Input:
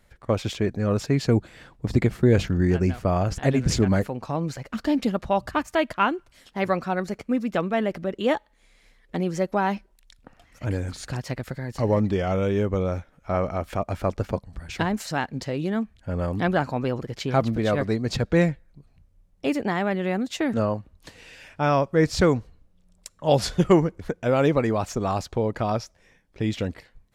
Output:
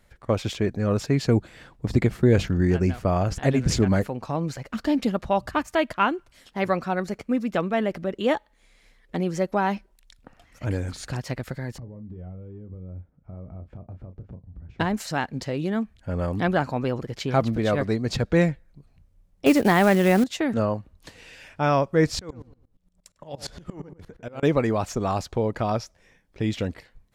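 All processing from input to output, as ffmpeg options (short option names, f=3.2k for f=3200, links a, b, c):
-filter_complex "[0:a]asettb=1/sr,asplit=3[a][b][c];[a]atrim=end=11.784[d];[b]atrim=start=11.78:end=14.8,asetpts=PTS-STARTPTS,afade=t=in:d=0.004:c=qsin,afade=t=out:st=3.016:d=0.004:c=qsin,bandpass=f=100:t=q:w=0.74,acompressor=threshold=-35dB:ratio=16:attack=3.2:release=140:knee=1:detection=peak,asplit=2[e][f];[f]adelay=33,volume=-10dB[g];[e][g]amix=inputs=2:normalize=0,atrim=end_sample=133182[h];[c]atrim=start=14.796[i];[d][h]acrossfade=d=0.004:c1=hsin:c2=qsin[j];[j][i]acrossfade=d=0.004:c1=qsin:c2=hsin,asettb=1/sr,asplit=3[k][l][m];[k]atrim=end=19.464[n];[l]atrim=start=19.46:end=20.24,asetpts=PTS-STARTPTS,afade=t=in:d=0.004:c=qsin,afade=t=out:st=0.776:d=0.004:c=qsin,acontrast=89,acrusher=bits=5:mode=log:mix=0:aa=0.000001[o];[m]atrim=start=20.236[p];[n][o]acrossfade=d=0.004:c1=hsin:c2=qsin[q];[q][p]acrossfade=d=0.004:c1=qsin:c2=hsin,asettb=1/sr,asplit=3[r][s][t];[r]atrim=end=22.194[u];[s]atrim=start=22.19:end=24.43,asetpts=PTS-STARTPTS,afade=t=in:d=0.004:c=qsin,afade=t=out:st=2.236:d=0.004:c=qsin,acompressor=threshold=-26dB:ratio=12:attack=3.2:release=140:knee=1:detection=peak,asplit=2[v][w];[w]adelay=100,lowpass=f=1.4k:p=1,volume=-8dB,asplit=2[x][y];[y]adelay=100,lowpass=f=1.4k:p=1,volume=0.31,asplit=2[z][aa];[aa]adelay=100,lowpass=f=1.4k:p=1,volume=0.31,asplit=2[ab][ac];[ac]adelay=100,lowpass=f=1.4k:p=1,volume=0.31[ad];[v][x][z][ab][ad]amix=inputs=5:normalize=0,atrim=end_sample=98784,aeval=exprs='val(0)*pow(10,-21*if(lt(mod(-8.6*n/s,1),2*abs(-8.6)/1000),1-mod(-8.6*n/s,1)/(2*abs(-8.6)/1000),(mod(-8.6*n/s,1)-2*abs(-8.6)/1000)/(1-2*abs(-8.6)/1000))/20)':c=same[ae];[t]atrim=start=24.426[af];[u][ae]acrossfade=d=0.004:c1=hsin:c2=qsin[ag];[ag][af]acrossfade=d=0.004:c1=qsin:c2=hsin"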